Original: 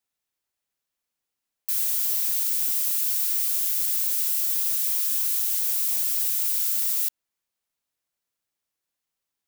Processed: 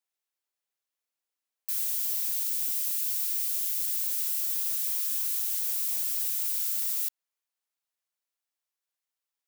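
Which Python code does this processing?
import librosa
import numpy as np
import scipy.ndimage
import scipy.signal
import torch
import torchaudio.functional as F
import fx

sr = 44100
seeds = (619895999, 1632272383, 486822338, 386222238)

y = fx.highpass(x, sr, hz=fx.steps((0.0, 360.0), (1.81, 1400.0), (4.03, 550.0)), slope=12)
y = y * 10.0 ** (-5.0 / 20.0)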